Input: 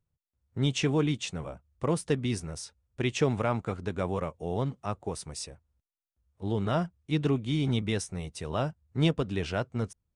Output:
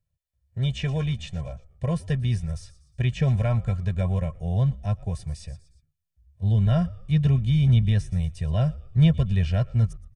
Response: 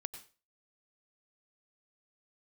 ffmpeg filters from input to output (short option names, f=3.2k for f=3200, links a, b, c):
-filter_complex "[0:a]asuperstop=centerf=1200:order=20:qfactor=5.2,asplit=2[a][b];[b]asplit=3[c][d][e];[c]adelay=117,afreqshift=-75,volume=-23dB[f];[d]adelay=234,afreqshift=-150,volume=-29.6dB[g];[e]adelay=351,afreqshift=-225,volume=-36.1dB[h];[f][g][h]amix=inputs=3:normalize=0[i];[a][i]amix=inputs=2:normalize=0,asubboost=boost=4.5:cutoff=210,acrossover=split=3400[j][k];[k]acompressor=threshold=-46dB:ratio=4:attack=1:release=60[l];[j][l]amix=inputs=2:normalize=0,equalizer=f=440:w=5.5:g=-7.5,aecho=1:1:1.7:0.89,volume=-2dB"